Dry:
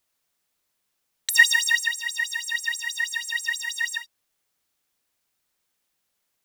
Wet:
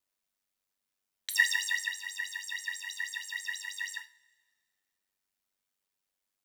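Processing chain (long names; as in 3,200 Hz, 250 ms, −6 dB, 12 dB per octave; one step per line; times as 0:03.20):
ring modulation 48 Hz
coupled-rooms reverb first 0.3 s, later 1.8 s, from −22 dB, DRR 7.5 dB
level −7.5 dB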